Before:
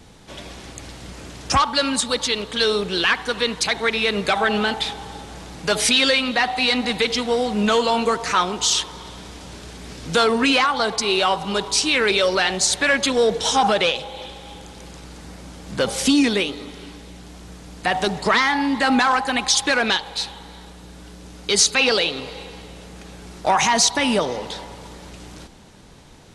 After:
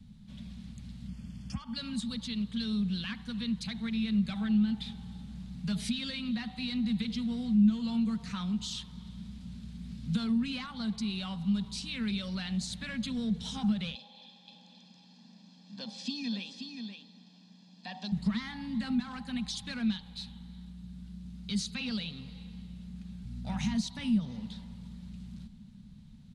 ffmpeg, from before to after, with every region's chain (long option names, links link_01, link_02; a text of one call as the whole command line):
ffmpeg -i in.wav -filter_complex "[0:a]asettb=1/sr,asplit=3[link_01][link_02][link_03];[link_01]atrim=end=1.084[link_04];[link_02]atrim=start=1.08:end=1.76,asetpts=PTS-STARTPTS,afade=type=in:duration=0.004:curve=qsin,afade=type=out:start_time=0.676:duration=0.004:curve=qsin,asuperstop=centerf=3900:order=8:qfactor=5.4,acompressor=threshold=-23dB:ratio=3:attack=3.2:release=140:knee=1:detection=peak[link_05];[link_03]atrim=start=1.756[link_06];[link_04][link_05]acrossfade=duration=0.004:curve1=hsin:curve2=qsin[link_07];[link_07][link_06]acrossfade=duration=0.004:curve1=qsin:curve2=hsin,asettb=1/sr,asplit=3[link_08][link_09][link_10];[link_08]atrim=end=13.954[link_11];[link_09]atrim=start=13.95:end=18.12,asetpts=PTS-STARTPTS,afade=type=in:duration=0.004:curve=qsin,afade=type=out:start_time=4.166:duration=0.004:curve=qsin,highpass=frequency=300:width=0.5412,highpass=frequency=300:width=1.3066,equalizer=frequency=450:width_type=q:width=4:gain=8,equalizer=frequency=1500:width_type=q:width=4:gain=-9,equalizer=frequency=2200:width_type=q:width=4:gain=-4,equalizer=frequency=4800:width_type=q:width=4:gain=6,lowpass=frequency=6200:width=0.5412,lowpass=frequency=6200:width=1.3066,aecho=1:1:1.2:0.7,atrim=end_sample=183897,aecho=1:1:527:0.422,atrim=end_sample=183897[link_12];[link_10]atrim=start=18.116[link_13];[link_11][link_12]acrossfade=duration=0.004:curve1=hsin:curve2=qsin[link_14];[link_14][link_13]acrossfade=duration=0.004:curve1=qsin:curve2=hsin,asettb=1/sr,asplit=3[link_15][link_16][link_17];[link_15]atrim=end=23.244[link_18];[link_16]atrim=start=23.24:end=23.75,asetpts=PTS-STARTPTS,afade=type=in:duration=0.004:curve=qsin,afade=type=out:start_time=0.506:duration=0.004:curve=qsin,bandreject=frequency=1100:width=8.6,aeval=exprs='val(0)+0.0251*(sin(2*PI*60*n/s)+sin(2*PI*2*60*n/s)/2+sin(2*PI*3*60*n/s)/3+sin(2*PI*4*60*n/s)/4+sin(2*PI*5*60*n/s)/5)':channel_layout=same,asplit=2[link_19][link_20];[link_20]adelay=46,volume=-11.5dB[link_21];[link_19][link_21]amix=inputs=2:normalize=0,atrim=end_sample=22491[link_22];[link_17]atrim=start=23.746[link_23];[link_18][link_22]acrossfade=duration=0.004:curve1=hsin:curve2=qsin[link_24];[link_24][link_23]acrossfade=duration=0.004:curve1=qsin:curve2=hsin,firequalizer=gain_entry='entry(110,0);entry(220,9);entry(310,-25);entry(1100,-20);entry(4000,-10);entry(5700,-18);entry(12000,-16)':delay=0.05:min_phase=1,acrossover=split=210[link_25][link_26];[link_26]acompressor=threshold=-27dB:ratio=6[link_27];[link_25][link_27]amix=inputs=2:normalize=0,volume=-5.5dB" out.wav